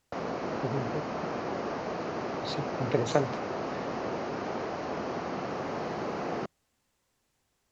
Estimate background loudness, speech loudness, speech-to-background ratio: −34.5 LKFS, −33.5 LKFS, 1.0 dB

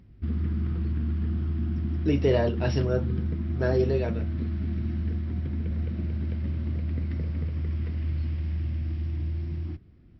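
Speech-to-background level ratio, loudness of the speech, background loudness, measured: 3.0 dB, −27.5 LKFS, −30.5 LKFS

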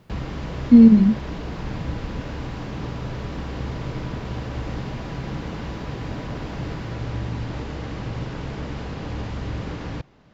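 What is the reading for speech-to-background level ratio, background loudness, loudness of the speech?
18.0 dB, −31.5 LKFS, −13.5 LKFS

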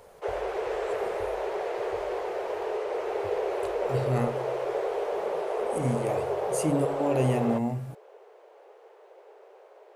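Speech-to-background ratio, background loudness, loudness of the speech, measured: 0.5 dB, −31.0 LKFS, −30.5 LKFS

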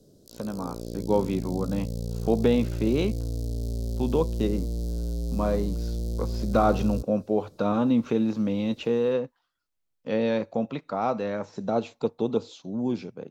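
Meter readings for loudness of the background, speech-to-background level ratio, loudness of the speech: −32.5 LKFS, 5.0 dB, −27.5 LKFS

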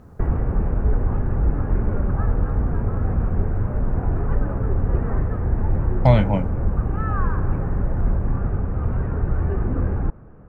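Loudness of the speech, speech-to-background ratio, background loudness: −20.0 LKFS, 4.0 dB, −24.0 LKFS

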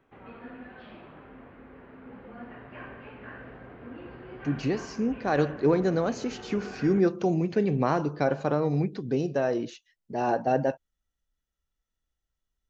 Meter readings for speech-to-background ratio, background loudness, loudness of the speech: 17.0 dB, −44.5 LKFS, −27.5 LKFS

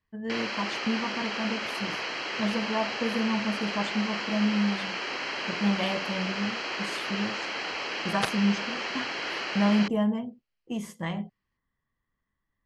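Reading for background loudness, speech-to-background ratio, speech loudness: −31.5 LKFS, 1.0 dB, −30.5 LKFS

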